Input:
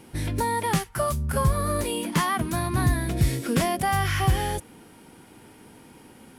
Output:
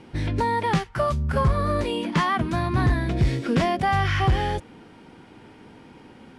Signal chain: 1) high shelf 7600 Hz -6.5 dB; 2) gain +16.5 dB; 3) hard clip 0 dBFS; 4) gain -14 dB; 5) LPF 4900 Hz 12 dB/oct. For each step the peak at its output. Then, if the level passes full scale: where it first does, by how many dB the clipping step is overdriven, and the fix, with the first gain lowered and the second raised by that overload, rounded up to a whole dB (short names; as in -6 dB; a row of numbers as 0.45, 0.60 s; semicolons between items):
-11.0, +5.5, 0.0, -14.0, -13.5 dBFS; step 2, 5.5 dB; step 2 +10.5 dB, step 4 -8 dB